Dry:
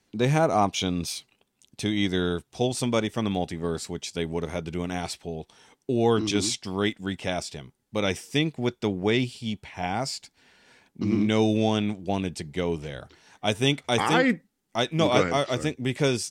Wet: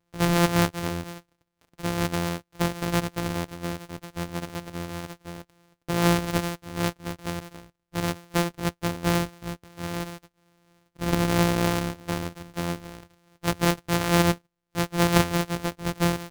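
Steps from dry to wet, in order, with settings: sorted samples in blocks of 256 samples; upward expansion 1.5:1, over -32 dBFS; trim +2 dB

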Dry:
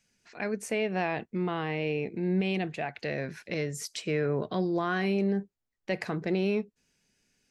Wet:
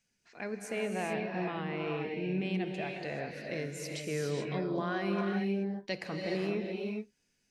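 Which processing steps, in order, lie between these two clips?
5.35–5.96 s: peaking EQ 880 Hz -> 5.4 kHz +13.5 dB 1.1 oct; reverberation, pre-delay 3 ms, DRR 1 dB; trim -6.5 dB

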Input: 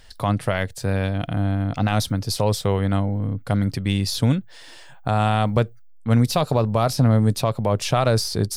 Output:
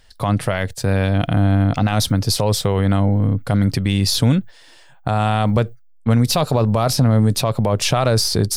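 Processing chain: peak limiter -15 dBFS, peak gain reduction 6.5 dB; gate -35 dBFS, range -11 dB; trim +7.5 dB

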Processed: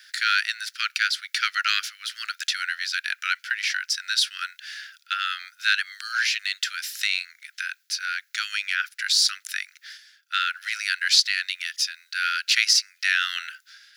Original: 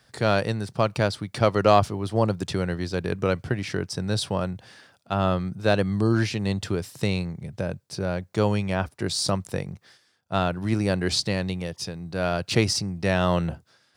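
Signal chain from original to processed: steep high-pass 1.4 kHz 96 dB/octave; peaking EQ 8.6 kHz -12 dB 0.26 oct; in parallel at 0 dB: compression, threshold -39 dBFS, peak gain reduction 17 dB; on the sum: trim +7 dB

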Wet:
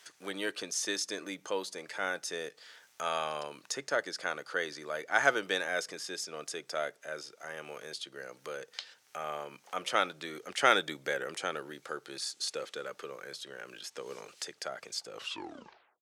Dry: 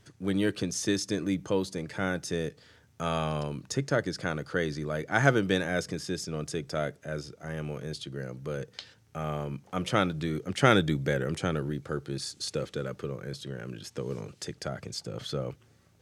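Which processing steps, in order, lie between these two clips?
tape stop on the ending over 0.89 s; high-pass 620 Hz 12 dB/octave; tape noise reduction on one side only encoder only

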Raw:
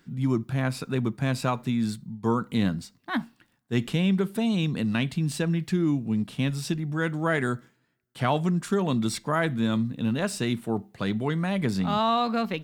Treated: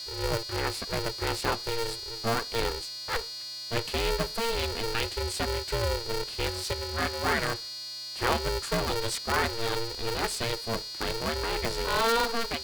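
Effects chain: bass shelf 350 Hz -7.5 dB; whistle 4.5 kHz -36 dBFS; polarity switched at an audio rate 230 Hz

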